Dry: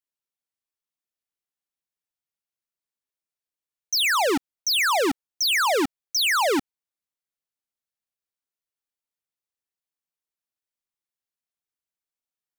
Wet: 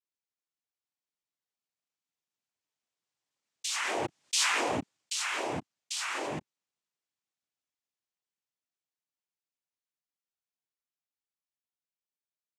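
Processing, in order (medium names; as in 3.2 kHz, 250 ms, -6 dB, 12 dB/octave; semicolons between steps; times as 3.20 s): Doppler pass-by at 4.40 s, 25 m/s, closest 1.3 m; noise-vocoded speech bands 4; level flattener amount 70%; trim -4.5 dB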